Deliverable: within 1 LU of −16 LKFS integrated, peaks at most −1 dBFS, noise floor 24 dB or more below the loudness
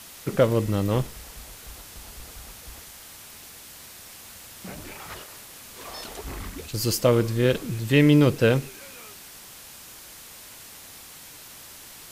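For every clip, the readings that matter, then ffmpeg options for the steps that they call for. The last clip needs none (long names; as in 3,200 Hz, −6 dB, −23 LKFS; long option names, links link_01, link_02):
background noise floor −45 dBFS; target noise floor −47 dBFS; integrated loudness −23.0 LKFS; sample peak −6.0 dBFS; target loudness −16.0 LKFS
→ -af "afftdn=noise_reduction=6:noise_floor=-45"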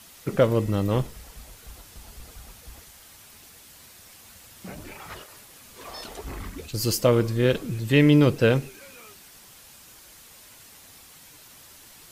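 background noise floor −50 dBFS; integrated loudness −22.5 LKFS; sample peak −6.0 dBFS; target loudness −16.0 LKFS
→ -af "volume=6.5dB,alimiter=limit=-1dB:level=0:latency=1"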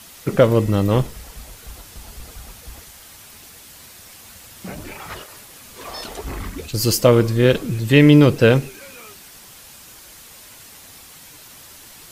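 integrated loudness −16.5 LKFS; sample peak −1.0 dBFS; background noise floor −43 dBFS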